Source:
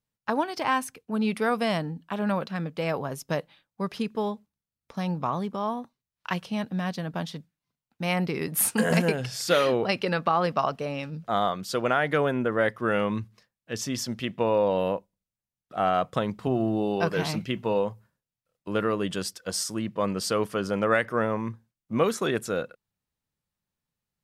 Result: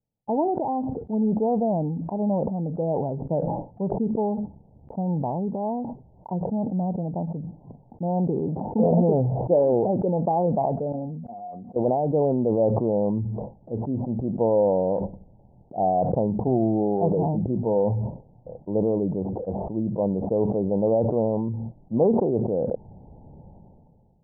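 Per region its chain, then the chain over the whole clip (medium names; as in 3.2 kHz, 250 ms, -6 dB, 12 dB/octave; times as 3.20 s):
10.92–11.76 s: feedback comb 240 Hz, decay 0.25 s, harmonics odd, mix 90% + compression 3:1, threshold -39 dBFS
whole clip: steep low-pass 890 Hz 96 dB/octave; decay stretcher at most 25 dB/s; trim +3 dB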